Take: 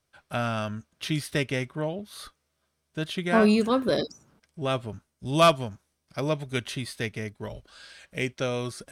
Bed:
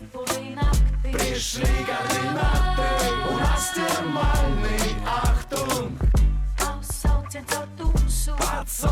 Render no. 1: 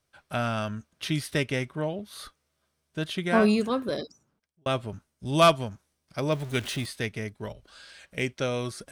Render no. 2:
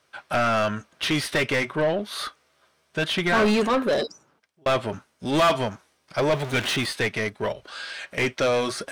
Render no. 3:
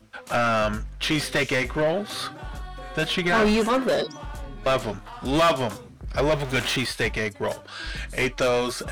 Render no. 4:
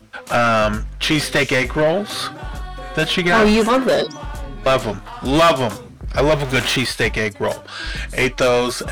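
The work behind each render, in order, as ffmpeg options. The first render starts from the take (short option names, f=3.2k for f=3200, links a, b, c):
-filter_complex "[0:a]asettb=1/sr,asplit=3[a][b][c];[a]atrim=end=6.324[d];[b]atrim=start=6.32:end=6.86,asetpts=PTS-STARTPTS,afade=t=in:d=0.004:c=qsin,afade=t=out:st=0.536:d=0.004:c=qsin,aeval=exprs='val(0)+0.5*0.0141*sgn(val(0))':c=same[e];[c]atrim=start=6.856[f];[d][e]acrossfade=d=0.004:c1=hsin:c2=qsin[g];[g][f]acrossfade=d=0.004:c1=qsin:c2=hsin,asettb=1/sr,asplit=3[h][i][j];[h]atrim=end=7.524[k];[i]atrim=start=7.52:end=8.18,asetpts=PTS-STARTPTS,afade=t=in:d=0.004:c=qsin,afade=t=out:st=0.656:d=0.004:c=qsin,acompressor=threshold=-44dB:ratio=6:attack=3.2:release=140:knee=1:detection=peak[l];[j]atrim=start=8.176[m];[k][l]acrossfade=d=0.004:c1=hsin:c2=qsin[n];[n][m]acrossfade=d=0.004:c1=qsin:c2=hsin,asplit=2[o][p];[o]atrim=end=4.66,asetpts=PTS-STARTPTS,afade=t=out:st=3.25:d=1.41[q];[p]atrim=start=4.66,asetpts=PTS-STARTPTS,afade=t=in:d=0.004:c=hsin[r];[q][r]concat=n=2:v=0:a=1"
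-filter_complex "[0:a]flanger=delay=0.6:depth=3.5:regen=-80:speed=0.29:shape=triangular,asplit=2[a][b];[b]highpass=f=720:p=1,volume=28dB,asoftclip=type=tanh:threshold=-12dB[c];[a][c]amix=inputs=2:normalize=0,lowpass=f=2.6k:p=1,volume=-6dB"
-filter_complex "[1:a]volume=-15.5dB[a];[0:a][a]amix=inputs=2:normalize=0"
-af "volume=6.5dB"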